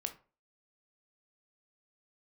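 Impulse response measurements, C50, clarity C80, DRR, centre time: 13.5 dB, 19.5 dB, 6.5 dB, 8 ms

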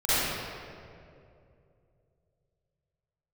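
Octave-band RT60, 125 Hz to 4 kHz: 3.7 s, 2.8 s, 3.0 s, 2.2 s, 1.8 s, 1.4 s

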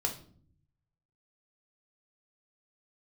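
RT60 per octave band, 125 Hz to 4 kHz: 1.3 s, 0.95 s, 0.60 s, 0.45 s, 0.35 s, 0.35 s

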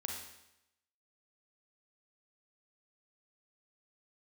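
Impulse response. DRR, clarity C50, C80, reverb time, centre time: 0.0 dB, 2.0 dB, 5.5 dB, 0.85 s, 46 ms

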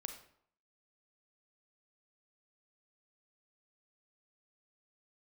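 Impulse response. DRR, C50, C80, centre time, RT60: 6.0 dB, 8.0 dB, 11.5 dB, 16 ms, 0.65 s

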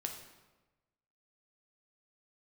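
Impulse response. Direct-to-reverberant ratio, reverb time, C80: 3.0 dB, 1.2 s, 8.5 dB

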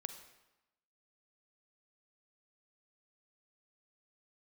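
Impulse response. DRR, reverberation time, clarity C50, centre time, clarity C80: 8.5 dB, 0.95 s, 9.0 dB, 15 ms, 11.0 dB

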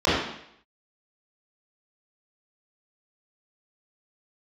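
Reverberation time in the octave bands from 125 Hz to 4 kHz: 0.65 s, 0.70 s, 0.70 s, 0.70 s, 0.75 s, 0.70 s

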